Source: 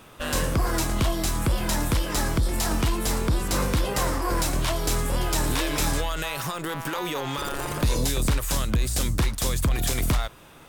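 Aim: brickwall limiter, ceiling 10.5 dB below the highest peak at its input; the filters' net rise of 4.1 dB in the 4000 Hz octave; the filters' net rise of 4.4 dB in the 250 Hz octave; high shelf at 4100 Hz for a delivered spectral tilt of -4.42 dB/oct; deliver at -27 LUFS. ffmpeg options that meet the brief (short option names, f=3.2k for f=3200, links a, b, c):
-af "equalizer=f=250:t=o:g=6,equalizer=f=4k:t=o:g=8.5,highshelf=f=4.1k:g=-6,volume=3dB,alimiter=limit=-18.5dB:level=0:latency=1"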